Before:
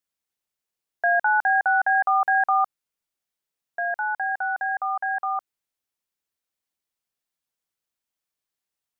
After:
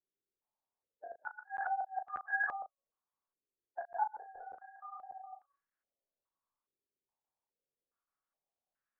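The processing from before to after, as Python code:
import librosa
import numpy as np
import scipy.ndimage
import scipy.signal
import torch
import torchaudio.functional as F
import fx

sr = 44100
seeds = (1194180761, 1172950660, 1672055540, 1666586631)

y = fx.spec_quant(x, sr, step_db=30)
y = fx.peak_eq(y, sr, hz=620.0, db=13.0, octaves=2.2, at=(4.61, 5.33))
y = fx.level_steps(y, sr, step_db=18)
y = fx.comb_fb(y, sr, f0_hz=560.0, decay_s=0.26, harmonics='all', damping=0.0, mix_pct=60)
y = fx.chorus_voices(y, sr, voices=2, hz=1.1, base_ms=25, depth_ms=3.0, mix_pct=45)
y = fx.gate_flip(y, sr, shuts_db=-38.0, range_db=-33)
y = fx.room_early_taps(y, sr, ms=(15, 37), db=(-10.5, -9.0))
y = fx.buffer_crackle(y, sr, first_s=0.39, period_s=0.59, block=512, kind='zero')
y = fx.filter_held_lowpass(y, sr, hz=2.4, low_hz=400.0, high_hz=1600.0)
y = y * 10.0 ** (7.0 / 20.0)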